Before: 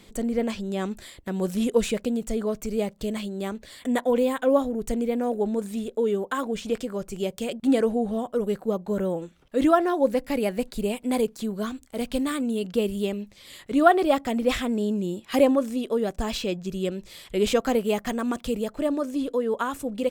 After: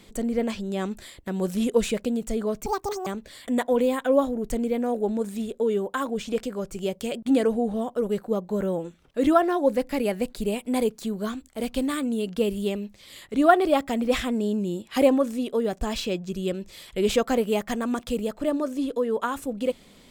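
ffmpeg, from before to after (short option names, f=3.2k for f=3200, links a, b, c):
-filter_complex "[0:a]asplit=3[a][b][c];[a]atrim=end=2.664[d];[b]atrim=start=2.66:end=3.44,asetpts=PTS-STARTPTS,asetrate=84672,aresample=44100[e];[c]atrim=start=3.436[f];[d][e]acrossfade=d=0.004:c1=hsin:c2=hsin[g];[g][f]acrossfade=d=0.004:c1=hsin:c2=hsin"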